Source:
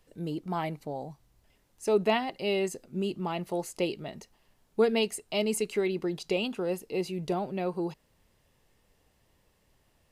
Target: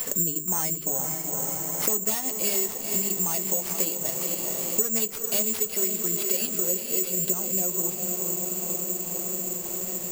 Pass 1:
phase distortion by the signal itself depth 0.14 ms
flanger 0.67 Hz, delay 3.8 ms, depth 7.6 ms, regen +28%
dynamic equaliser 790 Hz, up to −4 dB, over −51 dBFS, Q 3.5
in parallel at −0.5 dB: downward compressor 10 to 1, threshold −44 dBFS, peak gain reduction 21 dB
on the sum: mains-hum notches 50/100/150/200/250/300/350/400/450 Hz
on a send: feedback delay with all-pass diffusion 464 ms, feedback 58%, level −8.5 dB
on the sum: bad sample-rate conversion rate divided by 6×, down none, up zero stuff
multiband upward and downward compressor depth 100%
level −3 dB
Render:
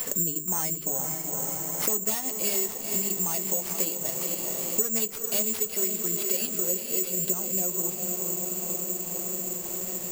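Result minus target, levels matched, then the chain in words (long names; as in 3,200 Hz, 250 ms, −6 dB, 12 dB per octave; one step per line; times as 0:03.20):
downward compressor: peak gain reduction +7 dB
phase distortion by the signal itself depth 0.14 ms
flanger 0.67 Hz, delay 3.8 ms, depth 7.6 ms, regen +28%
dynamic equaliser 790 Hz, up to −4 dB, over −51 dBFS, Q 3.5
in parallel at −0.5 dB: downward compressor 10 to 1, threshold −36.5 dBFS, peak gain reduction 14 dB
on the sum: mains-hum notches 50/100/150/200/250/300/350/400/450 Hz
on a send: feedback delay with all-pass diffusion 464 ms, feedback 58%, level −8.5 dB
on the sum: bad sample-rate conversion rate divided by 6×, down none, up zero stuff
multiband upward and downward compressor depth 100%
level −3 dB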